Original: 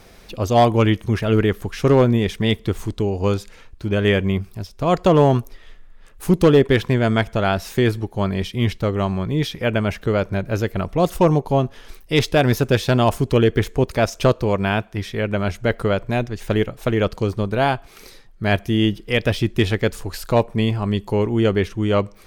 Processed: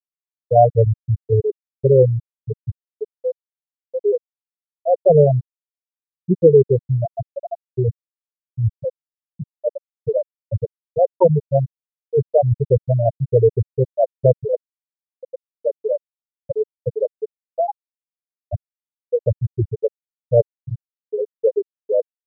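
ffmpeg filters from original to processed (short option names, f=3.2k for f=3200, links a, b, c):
-filter_complex "[0:a]asplit=2[a][b];[b]afade=t=in:st=9.97:d=0.01,afade=t=out:st=10.68:d=0.01,aecho=0:1:430|860|1290:0.473151|0.0709727|0.0106459[c];[a][c]amix=inputs=2:normalize=0,equalizer=f=125:t=o:w=1:g=8,equalizer=f=250:t=o:w=1:g=-5,equalizer=f=500:t=o:w=1:g=9,equalizer=f=1k:t=o:w=1:g=5,afftfilt=real='re*gte(hypot(re,im),2.24)':imag='im*gte(hypot(re,im),2.24)':win_size=1024:overlap=0.75,highshelf=f=3.1k:t=q:w=3:g=10,volume=-3dB"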